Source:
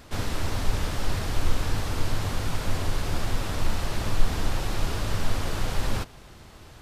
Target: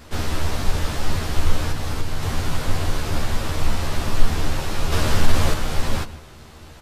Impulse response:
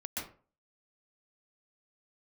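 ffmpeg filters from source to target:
-filter_complex "[0:a]asplit=2[a][b];[b]adelay=13,volume=-2dB[c];[a][c]amix=inputs=2:normalize=0,asettb=1/sr,asplit=3[d][e][f];[d]atrim=end=1.714[g];[e]atrim=start=1.71:end=2.23,asetpts=PTS-STARTPTS,afade=t=in:d=0.004:c=qsin,afade=t=out:st=0.516:d=0.004:c=qsin,acompressor=threshold=-22dB:ratio=2[h];[f]atrim=start=2.226[i];[g][h]acrossfade=d=0.004:c1=hsin:c2=qsin[j];[j][i]acrossfade=d=0.004:c1=qsin:c2=hsin,asplit=2[k][l];[1:a]atrim=start_sample=2205[m];[l][m]afir=irnorm=-1:irlink=0,volume=-16.5dB[n];[k][n]amix=inputs=2:normalize=0,asettb=1/sr,asplit=3[o][p][q];[o]atrim=end=4.924[r];[p]atrim=start=4.92:end=5.54,asetpts=PTS-STARTPTS,afade=t=in:d=0.004:c=qsin,afade=t=out:st=0.616:d=0.004:c=qsin,acontrast=32[s];[q]atrim=start=5.536[t];[r][s]acrossfade=d=0.004:c1=hsin:c2=qsin[u];[u][t]acrossfade=d=0.004:c1=qsin:c2=hsin,volume=1.5dB"

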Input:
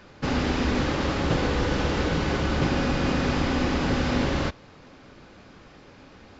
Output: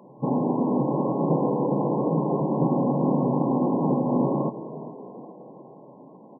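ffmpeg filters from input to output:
-filter_complex "[0:a]asplit=6[a][b][c][d][e][f];[b]adelay=416,afreqshift=82,volume=-16dB[g];[c]adelay=832,afreqshift=164,volume=-21.7dB[h];[d]adelay=1248,afreqshift=246,volume=-27.4dB[i];[e]adelay=1664,afreqshift=328,volume=-33dB[j];[f]adelay=2080,afreqshift=410,volume=-38.7dB[k];[a][g][h][i][j][k]amix=inputs=6:normalize=0,afftfilt=real='re*between(b*sr/4096,120,1100)':imag='im*between(b*sr/4096,120,1100)':win_size=4096:overlap=0.75,volume=3dB"

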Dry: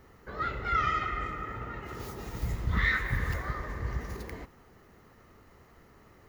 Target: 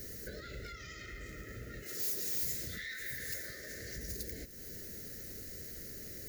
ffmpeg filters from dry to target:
-filter_complex "[0:a]asettb=1/sr,asplit=3[a][b][c];[a]atrim=end=1.834[d];[b]atrim=start=1.83:end=3.98,asetpts=PTS-STARTPTS,afade=t=in:d=0.004:c=qsin,afade=t=out:st=2.146:d=0.004:c=qsin,highpass=f=490:p=1[e];[c]atrim=start=3.976[f];[d][e]acrossfade=d=0.004:c1=hsin:c2=qsin[g];[g][f]acrossfade=d=0.004:c1=qsin:c2=hsin,alimiter=level_in=3dB:limit=-24dB:level=0:latency=1:release=70,volume=-3dB,acompressor=threshold=-50dB:ratio=4,aexciter=amount=7.1:drive=3.3:freq=4.2k,asoftclip=type=tanh:threshold=-36dB,asuperstop=centerf=970:order=8:qfactor=1.1,volume=7dB"

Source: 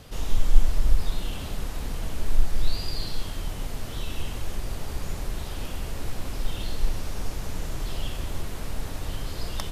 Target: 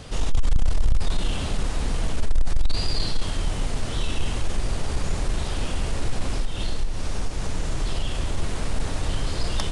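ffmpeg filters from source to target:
-filter_complex "[0:a]asettb=1/sr,asplit=3[a][b][c];[a]atrim=end=6.334[d];[b]atrim=start=6.33:end=8.38,asetpts=PTS-STARTPTS,afade=t=in:d=0.004:c=qsin,afade=t=out:st=2.046:d=0.004:c=qsin,acompressor=threshold=-25dB:ratio=6[e];[c]atrim=start=8.376[f];[d][e]acrossfade=d=0.004:c1=hsin:c2=qsin[g];[g][f]acrossfade=d=0.004:c1=qsin:c2=hsin,asoftclip=type=tanh:threshold=-18.5dB,aresample=22050,aresample=44100,volume=7dB"

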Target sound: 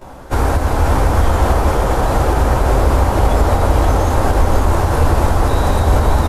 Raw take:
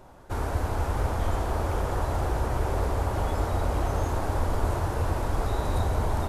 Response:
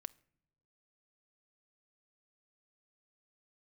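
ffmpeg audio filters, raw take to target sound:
-filter_complex "[0:a]alimiter=limit=-20.5dB:level=0:latency=1:release=142,aecho=1:1:535:0.531,asplit=2[a][b];[1:a]atrim=start_sample=2205,adelay=15[c];[b][c]afir=irnorm=-1:irlink=0,volume=16dB[d];[a][d]amix=inputs=2:normalize=0,volume=4dB"

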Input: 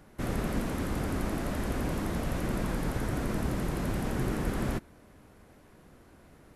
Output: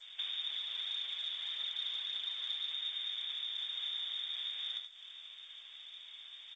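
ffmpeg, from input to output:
-filter_complex "[0:a]acompressor=threshold=-40dB:ratio=16,lowpass=f=3.1k:t=q:w=0.5098,lowpass=f=3.1k:t=q:w=0.6013,lowpass=f=3.1k:t=q:w=0.9,lowpass=f=3.1k:t=q:w=2.563,afreqshift=-3700,aemphasis=mode=production:type=bsi,asplit=2[a][b];[b]adelay=27,volume=-9dB[c];[a][c]amix=inputs=2:normalize=0,aecho=1:1:76:0.473,asettb=1/sr,asplit=3[d][e][f];[d]atrim=end=0.504[g];[e]atrim=start=0.5:end=2.72,asetpts=PTS-STARTPTS,afade=t=in:d=0.004:c=qsin,afade=t=out:st=2.216:d=0.004:c=qsin,aphaser=in_gain=1:out_gain=1:delay=2.1:decay=0.3:speed=1.8:type=triangular[h];[f]atrim=start=2.716[i];[g][h]acrossfade=d=0.004:c1=hsin:c2=qsin[j];[j][i]acrossfade=d=0.004:c1=qsin:c2=hsin,adynamicequalizer=threshold=0.00158:dfrequency=2700:dqfactor=3.6:tfrequency=2700:tqfactor=3.6:attack=5:release=100:ratio=0.375:range=3:mode=cutabove:tftype=bell" -ar 16000 -c:a g722

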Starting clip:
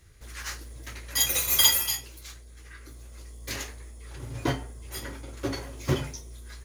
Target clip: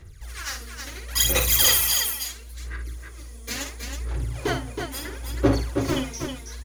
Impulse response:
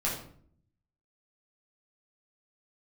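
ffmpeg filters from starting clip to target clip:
-af "asoftclip=type=hard:threshold=-18dB,aphaser=in_gain=1:out_gain=1:delay=4.4:decay=0.75:speed=0.73:type=sinusoidal,aecho=1:1:54|321:0.398|0.531"

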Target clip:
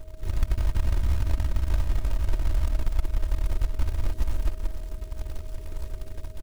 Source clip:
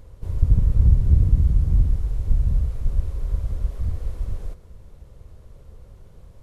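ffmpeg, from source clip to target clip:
-filter_complex "[0:a]aeval=exprs='if(lt(val(0),0),0.447*val(0),val(0))':c=same,lowshelf=f=81:g=4.5,asplit=2[a][b];[b]aecho=0:1:177|354|531:0.631|0.12|0.0228[c];[a][c]amix=inputs=2:normalize=0,dynaudnorm=f=170:g=9:m=5.5dB,firequalizer=gain_entry='entry(100,0);entry(160,-1);entry(440,3);entry(630,-21);entry(1600,-26);entry(2400,-2)':delay=0.05:min_phase=1,acrusher=bits=4:mode=log:mix=0:aa=0.000001,acompressor=threshold=-23dB:ratio=4,aeval=exprs='val(0)+0.00178*sin(2*PI*630*n/s)':c=same,aecho=1:1:3.2:0.5"

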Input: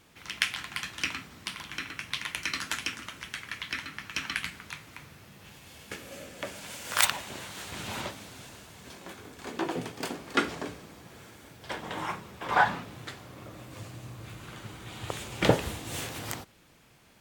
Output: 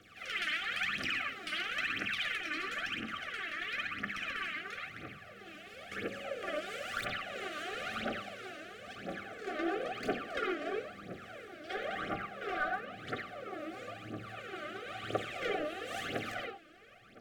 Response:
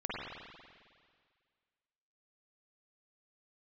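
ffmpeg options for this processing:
-filter_complex "[1:a]atrim=start_sample=2205,atrim=end_sample=6174[a];[0:a][a]afir=irnorm=-1:irlink=0,acrossover=split=170|380[b][c][d];[b]acompressor=threshold=-53dB:ratio=4[e];[c]acompressor=threshold=-43dB:ratio=4[f];[d]acompressor=threshold=-34dB:ratio=4[g];[e][f][g]amix=inputs=3:normalize=0,asetnsamples=n=441:p=0,asendcmd='2.37 lowpass f 1100',asplit=2[h][i];[i]highpass=f=720:p=1,volume=19dB,asoftclip=type=tanh:threshold=-13.5dB[j];[h][j]amix=inputs=2:normalize=0,lowpass=f=2.1k:p=1,volume=-6dB,aphaser=in_gain=1:out_gain=1:delay=3.4:decay=0.74:speed=0.99:type=triangular,asuperstop=centerf=950:order=20:qfactor=2.9,volume=-9dB"

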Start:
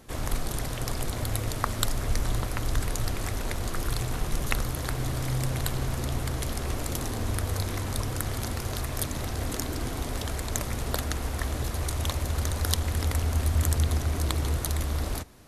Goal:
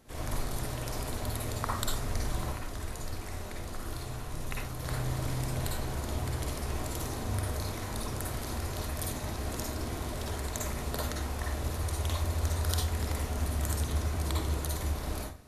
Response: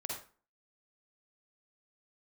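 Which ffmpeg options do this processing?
-filter_complex "[0:a]asettb=1/sr,asplit=3[a][b][c];[a]atrim=end=2.514[d];[b]atrim=start=2.51:end=4.8,asetpts=PTS-STARTPTS,afade=t=in:d=0.004:c=qsin,afade=t=out:st=2.286:d=0.004:c=qsin,flanger=delay=2.4:depth=4.4:regen=78:speed=1.4:shape=triangular[e];[c]atrim=start=4.796[f];[d][e]acrossfade=d=0.004:c1=hsin:c2=qsin[g];[g][f]acrossfade=d=0.004:c1=qsin:c2=hsin[h];[1:a]atrim=start_sample=2205[i];[h][i]afir=irnorm=-1:irlink=0,volume=-4dB"

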